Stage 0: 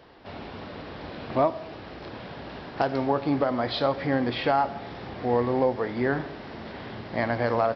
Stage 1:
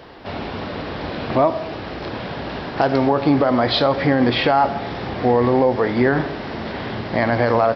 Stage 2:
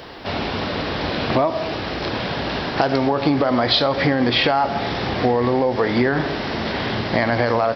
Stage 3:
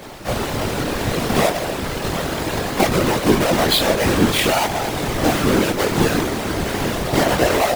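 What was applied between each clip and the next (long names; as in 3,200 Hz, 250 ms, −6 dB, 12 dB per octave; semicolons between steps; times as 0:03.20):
boost into a limiter +16 dB; level −5 dB
high-shelf EQ 3,100 Hz +9 dB; downward compressor, threshold −17 dBFS, peak gain reduction 6.5 dB; level +3 dB
each half-wave held at its own peak; multi-voice chorus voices 6, 0.56 Hz, delay 22 ms, depth 2 ms; random phases in short frames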